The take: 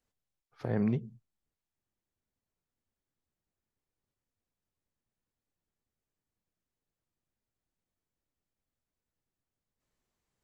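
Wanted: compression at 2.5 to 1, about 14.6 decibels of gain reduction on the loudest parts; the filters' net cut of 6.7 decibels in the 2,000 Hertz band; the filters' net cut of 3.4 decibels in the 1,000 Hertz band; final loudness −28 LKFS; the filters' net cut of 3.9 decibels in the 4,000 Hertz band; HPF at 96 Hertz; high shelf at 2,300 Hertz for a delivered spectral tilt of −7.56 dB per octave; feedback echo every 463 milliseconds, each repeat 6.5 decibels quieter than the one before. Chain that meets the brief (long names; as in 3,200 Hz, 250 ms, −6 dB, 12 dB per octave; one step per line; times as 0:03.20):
high-pass filter 96 Hz
parametric band 1,000 Hz −4 dB
parametric band 2,000 Hz −7.5 dB
high-shelf EQ 2,300 Hz +3.5 dB
parametric band 4,000 Hz −5.5 dB
downward compressor 2.5 to 1, threshold −49 dBFS
repeating echo 463 ms, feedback 47%, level −6.5 dB
level +23 dB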